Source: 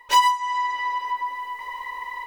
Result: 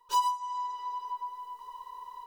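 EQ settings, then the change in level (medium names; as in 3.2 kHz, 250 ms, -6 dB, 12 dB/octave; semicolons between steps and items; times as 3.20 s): Butterworth band-stop 770 Hz, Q 3.4; static phaser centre 410 Hz, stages 8; -9.0 dB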